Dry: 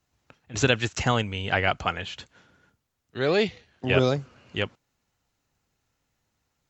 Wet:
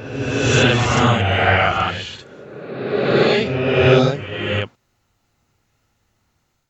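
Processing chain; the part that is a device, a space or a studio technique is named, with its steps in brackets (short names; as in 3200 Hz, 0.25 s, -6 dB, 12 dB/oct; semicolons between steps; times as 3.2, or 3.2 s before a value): reverse reverb (reverse; reverb RT60 1.8 s, pre-delay 29 ms, DRR -8 dB; reverse); gain +1 dB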